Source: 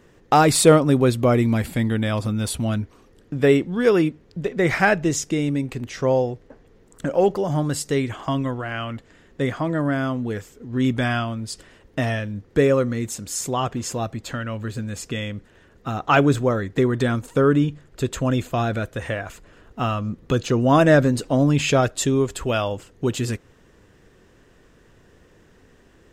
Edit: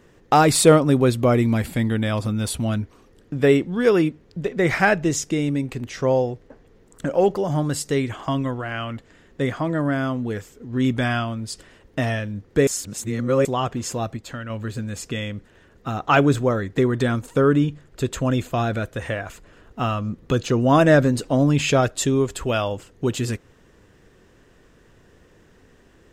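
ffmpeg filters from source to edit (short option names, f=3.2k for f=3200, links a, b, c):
-filter_complex "[0:a]asplit=5[a][b][c][d][e];[a]atrim=end=12.672[f];[b]atrim=start=12.668:end=13.452,asetpts=PTS-STARTPTS,areverse[g];[c]atrim=start=13.448:end=14.172[h];[d]atrim=start=14.168:end=14.502,asetpts=PTS-STARTPTS,volume=-4dB[i];[e]atrim=start=14.498[j];[f][g]acrossfade=d=0.004:c1=hsin:c2=hsin[k];[k][h]acrossfade=d=0.004:c1=hsin:c2=hsin[l];[l][i]acrossfade=d=0.004:c1=hsin:c2=hsin[m];[m][j]acrossfade=d=0.004:c1=hsin:c2=hsin"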